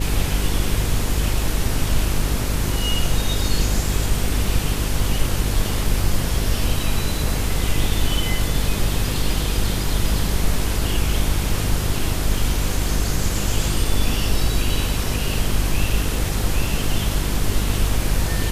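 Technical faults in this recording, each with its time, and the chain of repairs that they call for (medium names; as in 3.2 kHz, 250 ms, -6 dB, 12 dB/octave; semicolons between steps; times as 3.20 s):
buzz 50 Hz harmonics 10 -24 dBFS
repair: de-hum 50 Hz, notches 10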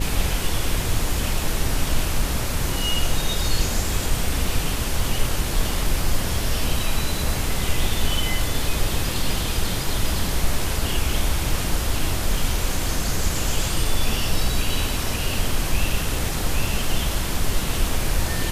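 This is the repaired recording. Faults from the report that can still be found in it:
nothing left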